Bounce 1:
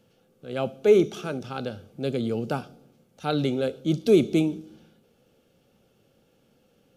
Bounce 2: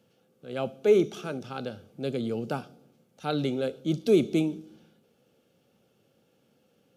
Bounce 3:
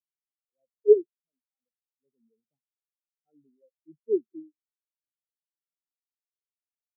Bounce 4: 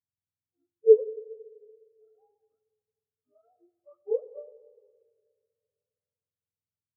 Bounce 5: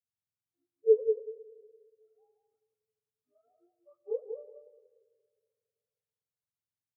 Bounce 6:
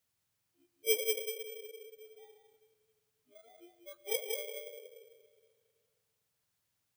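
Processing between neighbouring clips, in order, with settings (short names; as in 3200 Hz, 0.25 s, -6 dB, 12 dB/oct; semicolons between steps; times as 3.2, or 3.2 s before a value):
HPF 100 Hz; gain -3 dB
spectral expander 4:1; gain +4.5 dB
spectrum mirrored in octaves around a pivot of 430 Hz; reverb RT60 1.8 s, pre-delay 7 ms, DRR 13 dB
feedback echo 0.187 s, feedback 15%, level -6.5 dB; gain -6 dB
FFT order left unsorted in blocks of 16 samples; spectral compressor 2:1; gain -6.5 dB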